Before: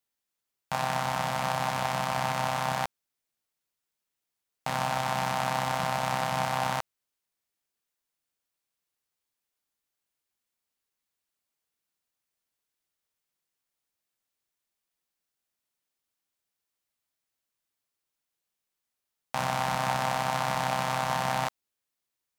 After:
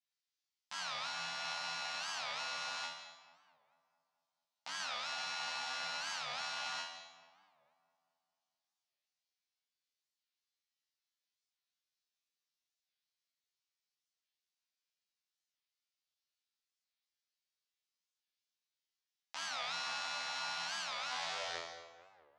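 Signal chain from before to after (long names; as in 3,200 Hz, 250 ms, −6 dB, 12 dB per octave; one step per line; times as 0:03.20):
turntable brake at the end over 1.31 s
low-pass filter 5,200 Hz 24 dB per octave
first difference
tuned comb filter 84 Hz, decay 0.6 s, harmonics all, mix 100%
feedback echo with a low-pass in the loop 220 ms, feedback 59%, low-pass 2,400 Hz, level −13.5 dB
on a send at −12 dB: convolution reverb RT60 0.65 s, pre-delay 136 ms
on the sum: wow of a warped record 45 rpm, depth 250 cents
level +15.5 dB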